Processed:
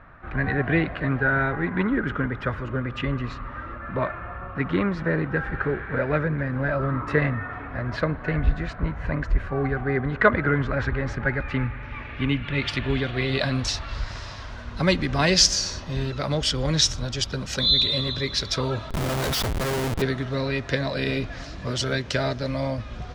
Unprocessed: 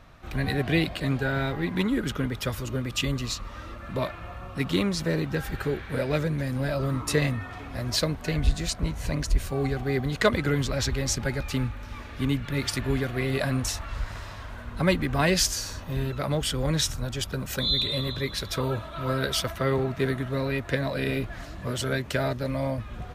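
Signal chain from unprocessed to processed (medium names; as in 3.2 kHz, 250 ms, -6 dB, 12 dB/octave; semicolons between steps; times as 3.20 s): low-pass sweep 1.6 kHz -> 5.4 kHz, 11.08–14.17 s; 18.90–20.02 s: Schmitt trigger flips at -31 dBFS; spring tank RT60 3.1 s, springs 32/56 ms, chirp 50 ms, DRR 19 dB; trim +1.5 dB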